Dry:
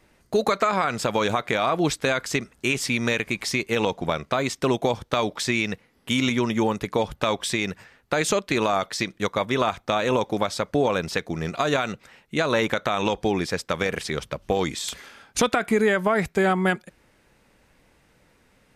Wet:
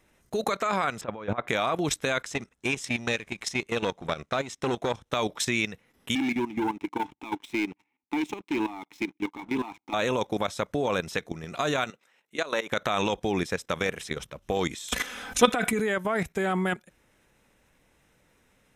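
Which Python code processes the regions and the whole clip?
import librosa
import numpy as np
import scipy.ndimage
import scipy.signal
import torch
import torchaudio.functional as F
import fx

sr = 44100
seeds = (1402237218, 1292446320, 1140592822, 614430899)

y = fx.chain(x, sr, fx.lowpass(hz=1800.0, slope=12),
    fx.over_compress(threshold_db=-27.0, ratio=-1.0), at=(1.01, 1.48))
y = fx.chain(y, sr, fx.law_mismatch(coded='A'),
    fx.lowpass(hz=9100.0, slope=12),
    fx.transformer_sat(knee_hz=1300.0), at=(2.22, 5.1))
y = fx.chain(y, sr, fx.vowel_filter(vowel='u'),
    fx.leveller(passes=3), at=(6.15, 9.94))
y = fx.chain(y, sr, fx.highpass(hz=310.0, slope=12),
    fx.level_steps(step_db=11), at=(11.9, 12.72))
y = fx.chain(y, sr, fx.comb(ms=4.0, depth=0.77),
    fx.env_flatten(amount_pct=50), at=(14.92, 15.8))
y = fx.high_shelf(y, sr, hz=3400.0, db=4.0)
y = fx.level_steps(y, sr, step_db=13)
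y = fx.notch(y, sr, hz=4600.0, q=5.7)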